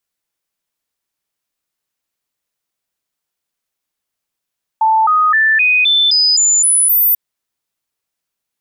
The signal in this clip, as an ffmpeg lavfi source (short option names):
-f lavfi -i "aevalsrc='0.376*clip(min(mod(t,0.26),0.26-mod(t,0.26))/0.005,0,1)*sin(2*PI*882*pow(2,floor(t/0.26)/2)*mod(t,0.26))':d=2.34:s=44100"